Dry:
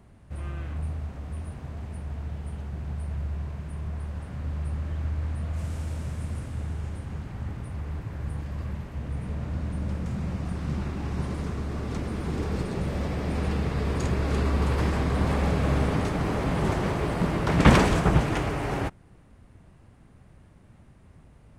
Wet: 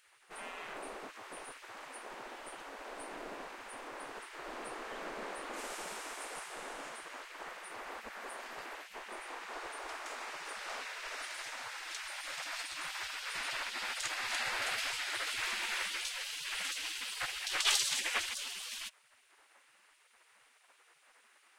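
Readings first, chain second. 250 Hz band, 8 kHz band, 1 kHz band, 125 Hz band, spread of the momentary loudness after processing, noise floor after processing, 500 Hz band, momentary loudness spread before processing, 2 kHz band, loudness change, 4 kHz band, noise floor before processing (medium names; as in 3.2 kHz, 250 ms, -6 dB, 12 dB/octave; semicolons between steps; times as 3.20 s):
-27.0 dB, +5.5 dB, -9.5 dB, under -40 dB, 13 LU, -67 dBFS, -16.0 dB, 11 LU, -2.0 dB, -9.5 dB, +4.0 dB, -54 dBFS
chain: bass shelf 68 Hz -4.5 dB; spectral gate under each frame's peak -25 dB weak; trim +5.5 dB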